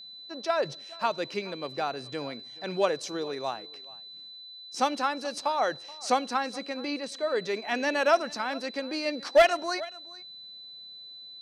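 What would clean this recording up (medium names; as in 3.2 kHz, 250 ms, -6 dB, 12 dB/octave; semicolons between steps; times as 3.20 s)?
clip repair -12 dBFS; band-stop 4 kHz, Q 30; inverse comb 428 ms -21.5 dB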